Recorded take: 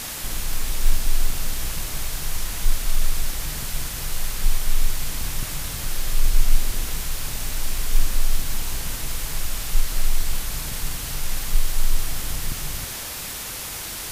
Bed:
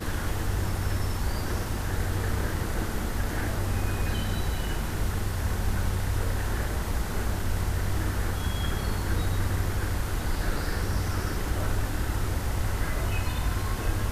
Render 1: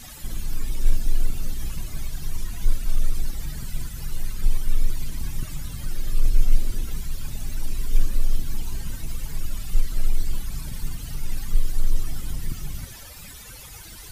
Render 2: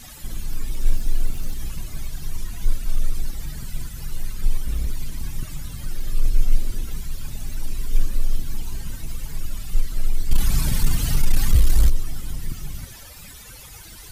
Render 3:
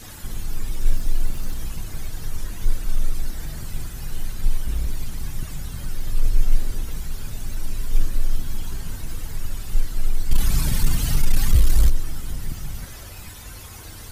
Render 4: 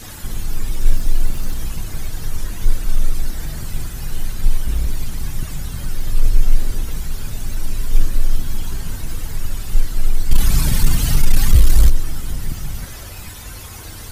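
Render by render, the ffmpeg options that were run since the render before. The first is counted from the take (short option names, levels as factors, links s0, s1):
-af "afftdn=nr=16:nf=-32"
-filter_complex "[0:a]asettb=1/sr,asplit=3[s0][s1][s2];[s0]atrim=end=0.704[s3];[s1]atrim=start=0.7:end=1.56,asetpts=PTS-STARTPTS,afade=t=in:d=0.004:c=qsin,afade=t=out:st=0.856:d=0.004:c=qsin,aeval=exprs='val(0)*gte(abs(val(0)),0.0133)':c=same[s4];[s2]atrim=start=1.556[s5];[s3][s4]acrossfade=d=0.004:c1=hsin:c2=qsin[s6];[s6][s5]acrossfade=d=0.004:c1=qsin:c2=hsin,asettb=1/sr,asplit=3[s7][s8][s9];[s7]atrim=end=4.624[s10];[s8]atrim=start=4.62:end=6.07,asetpts=PTS-STARTPTS,afade=t=in:d=0.004:c=qsin,afade=t=out:st=1.446:d=0.004:c=qsin,aeval=exprs='0.168*(abs(mod(val(0)/0.168+3,4)-2)-1)':c=same[s11];[s9]atrim=start=6.066[s12];[s10][s11]acrossfade=d=0.004:c1=hsin:c2=qsin[s13];[s13][s12]acrossfade=d=0.004:c1=qsin:c2=hsin,asplit=3[s14][s15][s16];[s14]afade=t=out:st=10.29:d=0.02[s17];[s15]aeval=exprs='0.447*sin(PI/2*2.51*val(0)/0.447)':c=same,afade=t=in:st=10.29:d=0.02,afade=t=out:st=11.89:d=0.02[s18];[s16]afade=t=in:st=11.89:d=0.02[s19];[s17][s18][s19]amix=inputs=3:normalize=0"
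-filter_complex "[1:a]volume=0.2[s0];[0:a][s0]amix=inputs=2:normalize=0"
-af "volume=1.78,alimiter=limit=0.891:level=0:latency=1"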